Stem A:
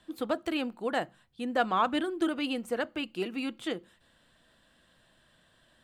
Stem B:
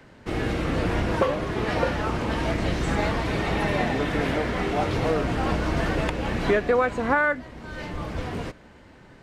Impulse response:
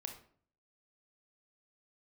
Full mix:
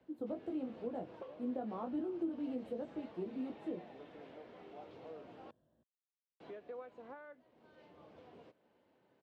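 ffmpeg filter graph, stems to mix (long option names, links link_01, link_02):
-filter_complex "[0:a]flanger=delay=16:depth=4.1:speed=1,volume=-2.5dB[link_01];[1:a]bandpass=frequency=3100:width_type=q:width=1.5:csg=0,acompressor=threshold=-54dB:ratio=1.5,volume=2dB,asplit=3[link_02][link_03][link_04];[link_02]atrim=end=5.51,asetpts=PTS-STARTPTS,afade=type=out:start_time=5.506:duration=0.004:curve=hsin[link_05];[link_03]atrim=start=5.51:end=6.4,asetpts=PTS-STARTPTS,volume=0[link_06];[link_04]atrim=start=6.4,asetpts=PTS-STARTPTS,afade=type=in:duration=0.004:curve=hsin[link_07];[link_05][link_06][link_07]concat=n=3:v=0:a=1[link_08];[link_01][link_08]amix=inputs=2:normalize=0,firequalizer=gain_entry='entry(490,0);entry(1200,-16);entry(1900,-25)':delay=0.05:min_phase=1,acrossover=split=250[link_09][link_10];[link_10]acompressor=threshold=-39dB:ratio=5[link_11];[link_09][link_11]amix=inputs=2:normalize=0,highpass=82"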